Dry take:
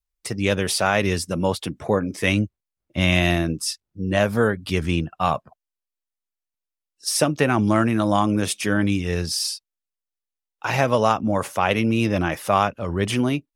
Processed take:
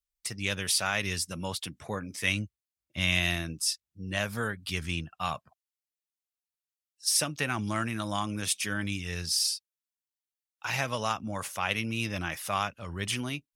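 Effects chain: amplifier tone stack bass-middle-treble 5-5-5; trim +4 dB

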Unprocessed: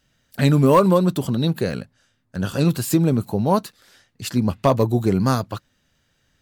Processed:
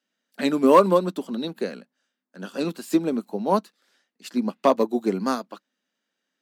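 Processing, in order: steep high-pass 200 Hz 48 dB/octave; treble shelf 10 kHz -9 dB; upward expansion 1.5:1, over -37 dBFS; trim +1 dB

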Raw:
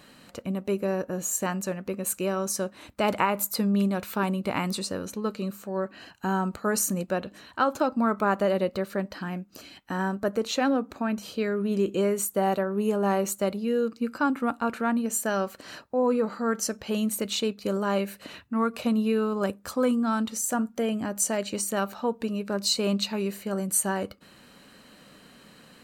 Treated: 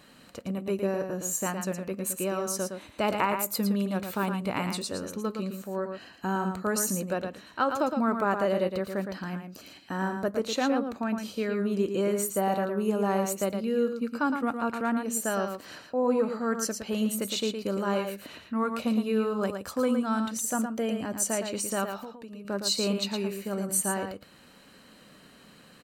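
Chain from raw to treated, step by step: 21.97–22.45 s: compression 12:1, threshold -37 dBFS, peak gain reduction 15.5 dB; delay 113 ms -6.5 dB; trim -2.5 dB

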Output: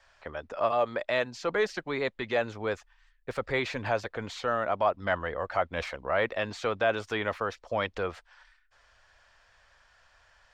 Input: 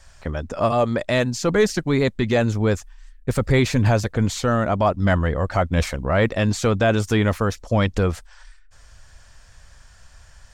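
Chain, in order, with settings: three-band isolator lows -17 dB, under 420 Hz, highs -19 dB, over 4.3 kHz; trim -5 dB

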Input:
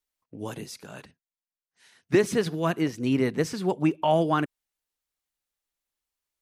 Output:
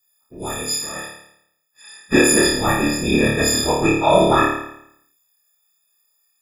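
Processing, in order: partials quantised in pitch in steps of 6 st; whisper effect; flutter echo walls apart 4.7 m, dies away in 0.73 s; trim +2.5 dB

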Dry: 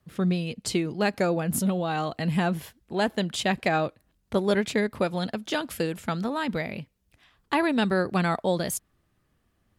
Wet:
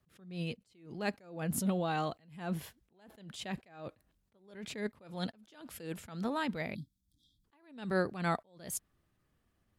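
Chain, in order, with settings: spectral selection erased 6.75–7.45 s, 330–3200 Hz; attacks held to a fixed rise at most 110 dB/s; trim -5.5 dB

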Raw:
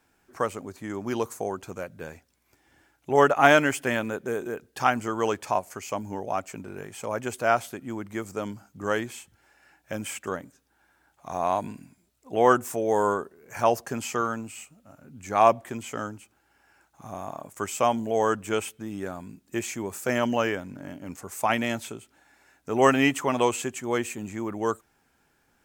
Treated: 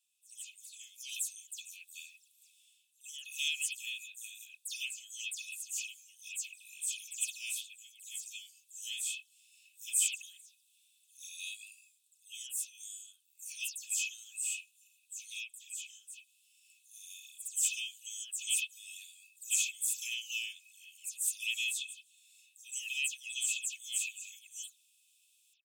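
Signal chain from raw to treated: delay that grows with frequency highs early, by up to 109 ms; level rider gain up to 13 dB; rippled Chebyshev high-pass 2.5 kHz, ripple 9 dB; trim -2 dB

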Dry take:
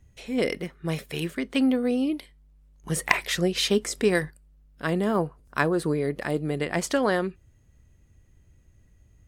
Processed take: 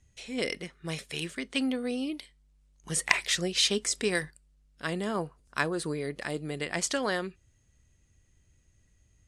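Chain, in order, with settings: low-pass 9.6 kHz 24 dB/octave; treble shelf 2.1 kHz +12 dB; trim -8 dB

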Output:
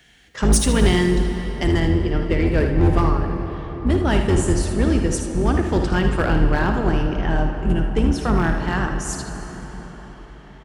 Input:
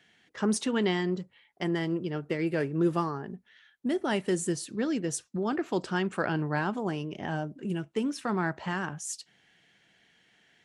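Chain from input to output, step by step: octave divider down 2 oct, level +4 dB; treble shelf 6.3 kHz +10.5 dB, from 1.80 s -3.5 dB; hard clipper -19.5 dBFS, distortion -17 dB; early reflections 56 ms -11 dB, 78 ms -9 dB; reverberation RT60 5.5 s, pre-delay 62 ms, DRR 6.5 dB; trim +7.5 dB

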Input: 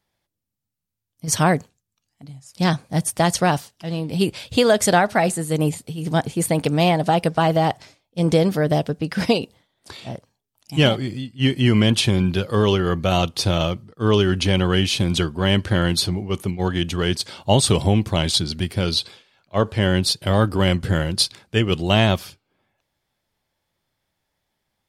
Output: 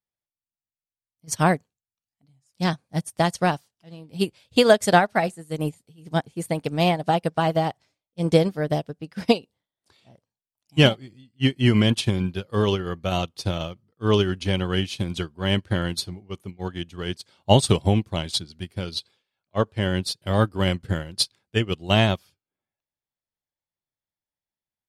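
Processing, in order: upward expansion 2.5:1, over -28 dBFS; trim +2.5 dB

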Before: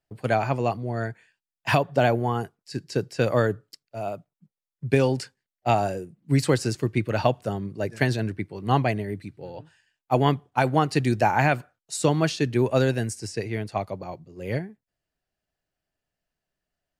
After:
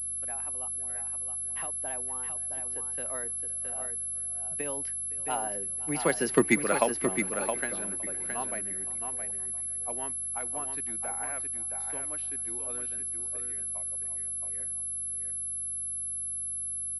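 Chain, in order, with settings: Doppler pass-by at 6.42 s, 23 m/s, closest 2.2 m; peaking EQ 1.4 kHz +9.5 dB 2.4 oct; in parallel at +3 dB: compression, threshold -42 dBFS, peak gain reduction 22 dB; on the sum: steep high-pass 170 Hz 36 dB/octave; Chebyshev shaper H 3 -15 dB, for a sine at -11 dBFS; sine folder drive 3 dB, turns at -10 dBFS; delay 668 ms -6.5 dB; hum 50 Hz, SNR 19 dB; on a send: feedback delay 513 ms, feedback 54%, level -20.5 dB; on the sum: class-D stage that switches slowly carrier 11 kHz

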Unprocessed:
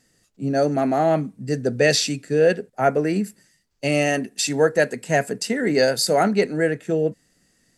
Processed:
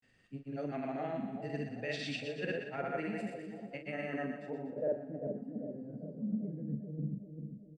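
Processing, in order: peaking EQ 8.7 kHz +13 dB 0.22 oct; reverse; compression 6:1, threshold -31 dBFS, peak gain reduction 17.5 dB; reverse; low-pass sweep 2.7 kHz -> 200 Hz, 3.69–5.51 s; granulator, pitch spread up and down by 0 st; doubling 42 ms -9 dB; on a send: two-band feedback delay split 790 Hz, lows 394 ms, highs 121 ms, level -7 dB; on the sum: trim -5.5 dB

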